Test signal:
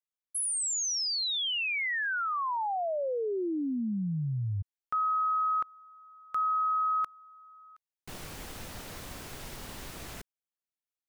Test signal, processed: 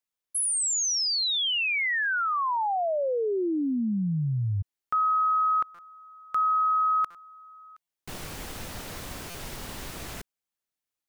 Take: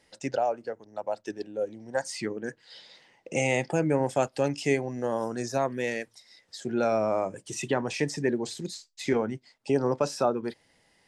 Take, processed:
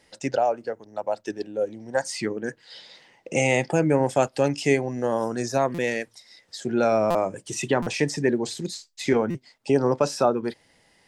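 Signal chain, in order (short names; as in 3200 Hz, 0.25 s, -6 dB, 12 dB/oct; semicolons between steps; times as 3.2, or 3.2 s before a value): stuck buffer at 5.74/7.1/7.82/9.3, samples 256, times 7; gain +4.5 dB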